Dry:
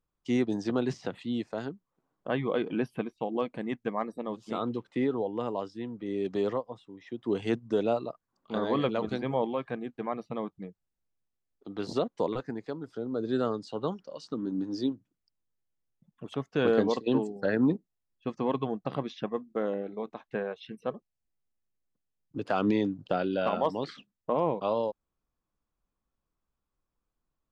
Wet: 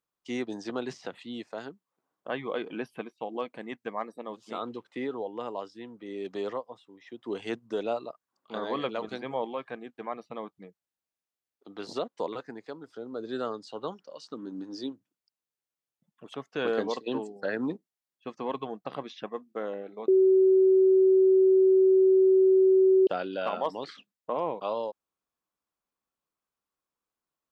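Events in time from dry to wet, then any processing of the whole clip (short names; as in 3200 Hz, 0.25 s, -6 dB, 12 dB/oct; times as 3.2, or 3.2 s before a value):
20.08–23.07 bleep 379 Hz -12 dBFS
whole clip: HPF 520 Hz 6 dB/oct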